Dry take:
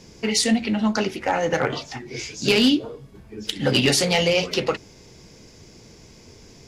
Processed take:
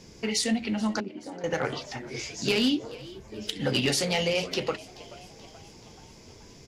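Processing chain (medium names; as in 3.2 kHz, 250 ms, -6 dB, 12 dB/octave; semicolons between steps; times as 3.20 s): in parallel at -1 dB: compression, threshold -29 dBFS, peak gain reduction 14.5 dB; 1.00–1.44 s: on the sum: band-pass filter 250 Hz, Q 2.3; frequency-shifting echo 430 ms, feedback 57%, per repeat +92 Hz, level -20 dB; trim -8.5 dB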